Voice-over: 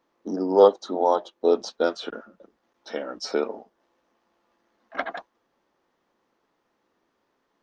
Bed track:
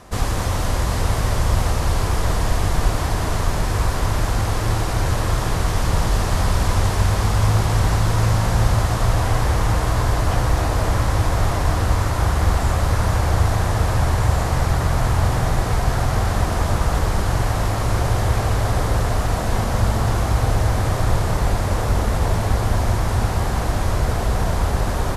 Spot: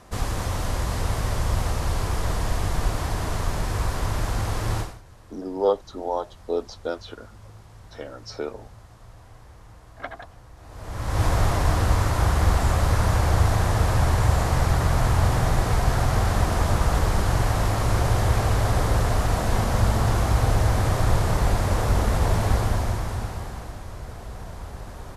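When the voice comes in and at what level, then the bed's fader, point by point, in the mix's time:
5.05 s, -6.0 dB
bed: 4.80 s -5.5 dB
5.02 s -29 dB
10.56 s -29 dB
11.23 s -2 dB
22.55 s -2 dB
23.84 s -17 dB

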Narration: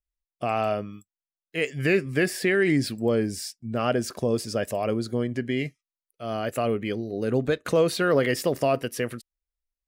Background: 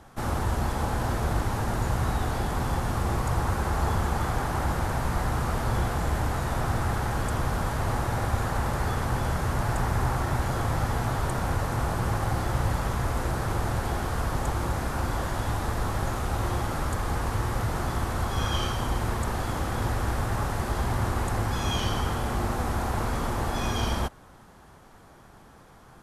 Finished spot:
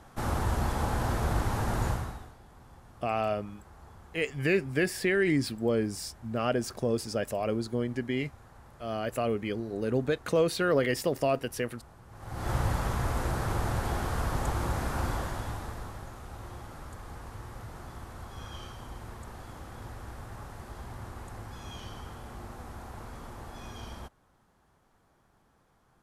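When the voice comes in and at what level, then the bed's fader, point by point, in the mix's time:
2.60 s, -4.0 dB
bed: 1.89 s -2 dB
2.37 s -26 dB
12.08 s -26 dB
12.50 s -2.5 dB
15.08 s -2.5 dB
16.09 s -15.5 dB

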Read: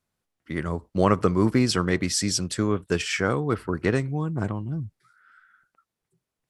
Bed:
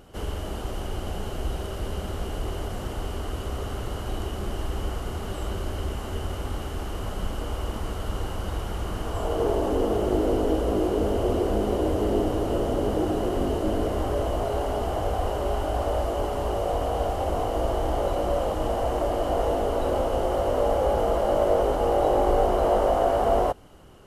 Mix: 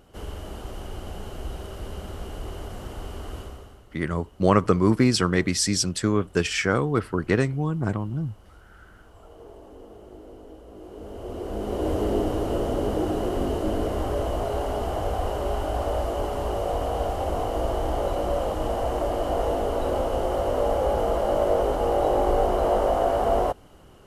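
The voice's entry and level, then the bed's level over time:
3.45 s, +1.5 dB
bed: 3.39 s -4.5 dB
3.87 s -21.5 dB
10.68 s -21.5 dB
11.91 s -0.5 dB

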